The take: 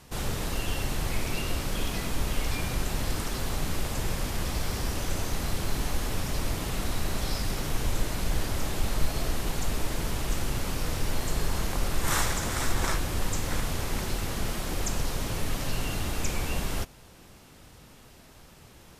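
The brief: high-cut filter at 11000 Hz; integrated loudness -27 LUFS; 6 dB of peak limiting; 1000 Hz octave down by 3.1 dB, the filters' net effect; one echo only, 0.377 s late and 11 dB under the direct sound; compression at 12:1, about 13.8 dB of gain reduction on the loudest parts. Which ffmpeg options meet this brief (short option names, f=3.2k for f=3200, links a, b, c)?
-af "lowpass=11k,equalizer=f=1k:t=o:g=-4,acompressor=threshold=-31dB:ratio=12,alimiter=level_in=5dB:limit=-24dB:level=0:latency=1,volume=-5dB,aecho=1:1:377:0.282,volume=14dB"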